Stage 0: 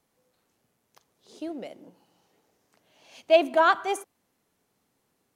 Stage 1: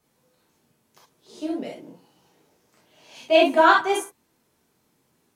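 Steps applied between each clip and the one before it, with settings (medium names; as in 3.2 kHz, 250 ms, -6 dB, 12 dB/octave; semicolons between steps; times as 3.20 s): gated-style reverb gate 90 ms flat, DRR -4 dB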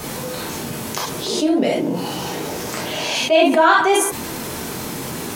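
level flattener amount 70%; trim +1 dB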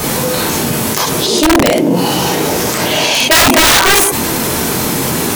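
treble shelf 10 kHz +4 dB; integer overflow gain 10.5 dB; loudness maximiser +14 dB; trim -2 dB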